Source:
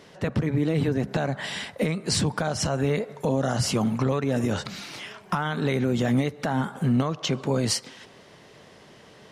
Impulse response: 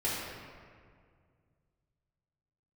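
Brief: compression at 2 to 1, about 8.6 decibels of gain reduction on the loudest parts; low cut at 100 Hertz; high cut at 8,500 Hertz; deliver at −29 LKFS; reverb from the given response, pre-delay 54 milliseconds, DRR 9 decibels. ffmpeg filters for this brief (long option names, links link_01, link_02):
-filter_complex "[0:a]highpass=100,lowpass=8500,acompressor=threshold=-36dB:ratio=2,asplit=2[link_01][link_02];[1:a]atrim=start_sample=2205,adelay=54[link_03];[link_02][link_03]afir=irnorm=-1:irlink=0,volume=-17dB[link_04];[link_01][link_04]amix=inputs=2:normalize=0,volume=4.5dB"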